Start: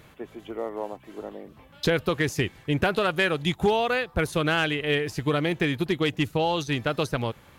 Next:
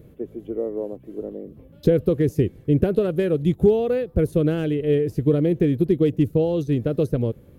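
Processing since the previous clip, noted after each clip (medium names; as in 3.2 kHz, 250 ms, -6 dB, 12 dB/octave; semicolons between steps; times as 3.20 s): FFT filter 490 Hz 0 dB, 860 Hz -21 dB, 4.7 kHz -21 dB, 7.6 kHz -19 dB, 12 kHz -10 dB; trim +7 dB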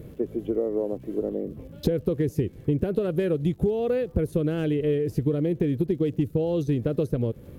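compression, threshold -27 dBFS, peak gain reduction 14.5 dB; crackle 160 per s -58 dBFS; trim +5.5 dB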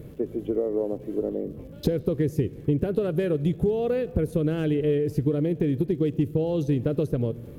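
reverberation RT60 2.1 s, pre-delay 7 ms, DRR 16.5 dB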